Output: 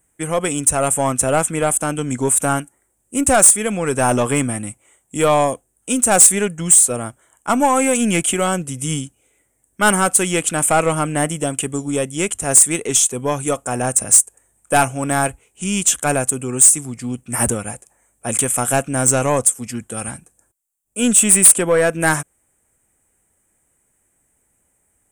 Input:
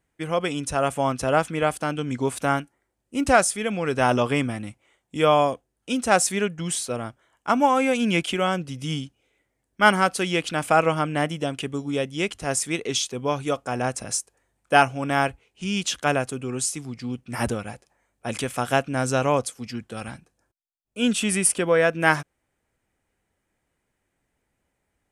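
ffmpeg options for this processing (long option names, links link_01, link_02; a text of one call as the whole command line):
ffmpeg -i in.wav -af "aeval=exprs='0.891*(cos(1*acos(clip(val(0)/0.891,-1,1)))-cos(1*PI/2))+0.158*(cos(5*acos(clip(val(0)/0.891,-1,1)))-cos(5*PI/2))+0.0398*(cos(8*acos(clip(val(0)/0.891,-1,1)))-cos(8*PI/2))':channel_layout=same,highshelf=frequency=6200:width_type=q:width=3:gain=10.5,asoftclip=type=tanh:threshold=-4dB" out.wav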